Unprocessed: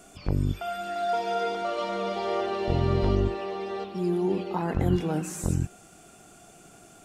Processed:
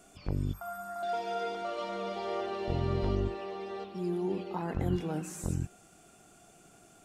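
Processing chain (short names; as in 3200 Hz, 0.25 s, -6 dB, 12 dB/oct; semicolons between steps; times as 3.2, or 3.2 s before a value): 0.53–1.03 EQ curve 200 Hz 0 dB, 370 Hz -16 dB, 1100 Hz +8 dB, 3000 Hz -20 dB, 11000 Hz +11 dB; gain -6.5 dB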